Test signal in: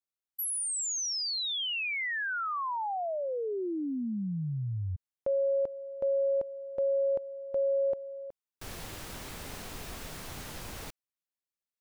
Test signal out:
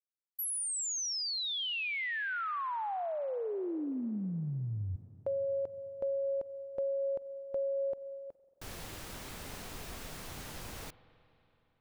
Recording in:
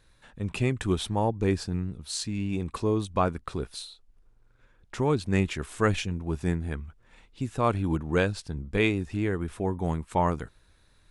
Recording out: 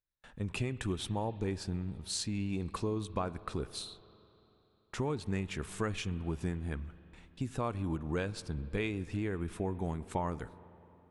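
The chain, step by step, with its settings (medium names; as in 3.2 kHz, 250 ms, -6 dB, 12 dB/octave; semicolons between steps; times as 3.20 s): gate with hold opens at -47 dBFS, hold 28 ms, range -32 dB; compression, threshold -28 dBFS; spring tank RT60 3.4 s, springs 42/46 ms, chirp 25 ms, DRR 16.5 dB; trim -2.5 dB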